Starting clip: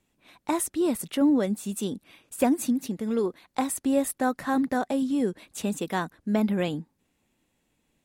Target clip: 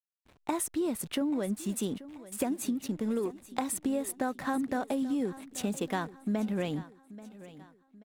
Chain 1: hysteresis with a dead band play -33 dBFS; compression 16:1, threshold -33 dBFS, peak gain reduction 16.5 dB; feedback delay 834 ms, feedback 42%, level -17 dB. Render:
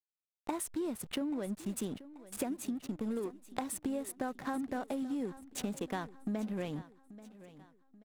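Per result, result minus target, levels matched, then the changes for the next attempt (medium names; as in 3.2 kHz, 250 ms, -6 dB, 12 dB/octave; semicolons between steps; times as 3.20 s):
hysteresis with a dead band: distortion +9 dB; compression: peak gain reduction +5.5 dB
change: hysteresis with a dead band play -42.5 dBFS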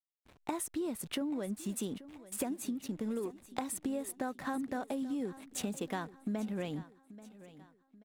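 compression: peak gain reduction +5.5 dB
change: compression 16:1, threshold -27 dBFS, peak gain reduction 11 dB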